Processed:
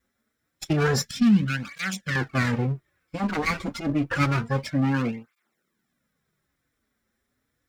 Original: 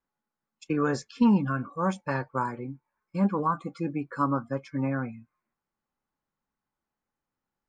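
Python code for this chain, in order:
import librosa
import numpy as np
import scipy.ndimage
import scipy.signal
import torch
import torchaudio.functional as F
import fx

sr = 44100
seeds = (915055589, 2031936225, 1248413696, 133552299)

p1 = fx.lower_of_two(x, sr, delay_ms=0.54)
p2 = fx.band_shelf(p1, sr, hz=590.0, db=-14.0, octaves=2.4, at=(1.05, 2.16))
p3 = fx.over_compress(p2, sr, threshold_db=-37.0, ratio=-1.0)
p4 = p2 + (p3 * 10.0 ** (-0.5 / 20.0))
p5 = fx.dynamic_eq(p4, sr, hz=5100.0, q=0.96, threshold_db=-48.0, ratio=4.0, max_db=4)
p6 = fx.buffer_glitch(p5, sr, at_s=(5.33,), block=256, repeats=9)
p7 = fx.flanger_cancel(p6, sr, hz=0.28, depth_ms=6.8)
y = p7 * 10.0 ** (6.0 / 20.0)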